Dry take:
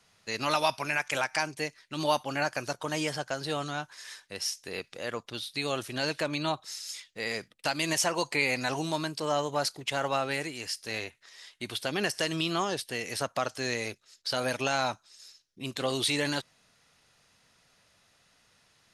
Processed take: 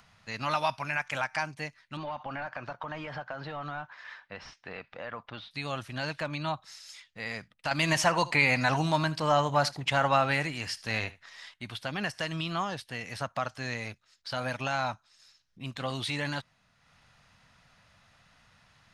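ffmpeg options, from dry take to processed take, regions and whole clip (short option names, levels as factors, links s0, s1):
-filter_complex "[0:a]asettb=1/sr,asplit=3[s0][s1][s2];[s0]atrim=end=1.974[s3];[s1]atrim=start=1.97:end=5.51,asetpts=PTS-STARTPTS,afade=t=in:d=0.004:c=qsin,afade=t=out:st=3.536:d=0.004:c=qsin,asplit=2[s4][s5];[s5]highpass=f=720:p=1,volume=6.31,asoftclip=type=tanh:threshold=0.211[s6];[s4][s6]amix=inputs=2:normalize=0,lowpass=f=1100:p=1,volume=0.501,acompressor=threshold=0.0316:ratio=10:attack=3.2:release=140:knee=1:detection=peak,lowpass=4200[s7];[s2]atrim=start=5.506[s8];[s3][s7]acrossfade=d=0.004:c1=hsin:c2=qsin[s9];[s9][s8]acrossfade=d=0.004:c1=qsin:c2=hsin,asettb=1/sr,asplit=3[s10][s11][s12];[s10]atrim=end=7.714[s13];[s11]atrim=start=7.71:end=11.54,asetpts=PTS-STARTPTS,afade=t=in:d=0.004:c=qsin,afade=t=out:st=3.826:d=0.004:c=qsin,acontrast=76,aecho=1:1:77:0.106,atrim=end_sample=168903[s14];[s12]atrim=start=11.536[s15];[s13][s14]acrossfade=d=0.004:c1=hsin:c2=qsin[s16];[s16][s15]acrossfade=d=0.004:c1=qsin:c2=hsin,lowpass=f=1200:p=1,equalizer=f=390:t=o:w=1.2:g=-15,acompressor=mode=upward:threshold=0.00126:ratio=2.5,volume=1.68"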